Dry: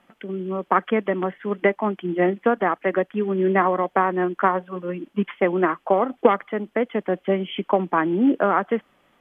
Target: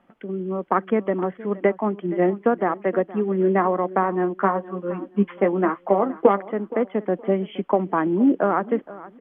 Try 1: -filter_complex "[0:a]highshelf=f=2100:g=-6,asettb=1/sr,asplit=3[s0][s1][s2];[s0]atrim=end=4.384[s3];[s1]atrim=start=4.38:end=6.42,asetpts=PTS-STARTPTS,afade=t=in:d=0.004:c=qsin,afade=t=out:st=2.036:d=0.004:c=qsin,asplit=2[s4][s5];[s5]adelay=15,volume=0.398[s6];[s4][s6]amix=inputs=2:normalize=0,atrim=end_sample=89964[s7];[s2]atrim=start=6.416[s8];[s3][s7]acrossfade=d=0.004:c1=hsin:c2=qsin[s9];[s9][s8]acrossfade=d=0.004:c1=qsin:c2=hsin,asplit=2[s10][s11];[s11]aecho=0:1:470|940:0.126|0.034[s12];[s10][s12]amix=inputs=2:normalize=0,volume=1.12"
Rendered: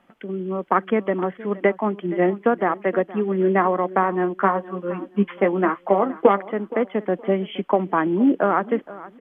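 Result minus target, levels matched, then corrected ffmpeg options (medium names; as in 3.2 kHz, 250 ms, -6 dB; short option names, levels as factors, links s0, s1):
4 kHz band +5.5 dB
-filter_complex "[0:a]highshelf=f=2100:g=-15,asettb=1/sr,asplit=3[s0][s1][s2];[s0]atrim=end=4.384[s3];[s1]atrim=start=4.38:end=6.42,asetpts=PTS-STARTPTS,afade=t=in:d=0.004:c=qsin,afade=t=out:st=2.036:d=0.004:c=qsin,asplit=2[s4][s5];[s5]adelay=15,volume=0.398[s6];[s4][s6]amix=inputs=2:normalize=0,atrim=end_sample=89964[s7];[s2]atrim=start=6.416[s8];[s3][s7]acrossfade=d=0.004:c1=hsin:c2=qsin[s9];[s9][s8]acrossfade=d=0.004:c1=qsin:c2=hsin,asplit=2[s10][s11];[s11]aecho=0:1:470|940:0.126|0.034[s12];[s10][s12]amix=inputs=2:normalize=0,volume=1.12"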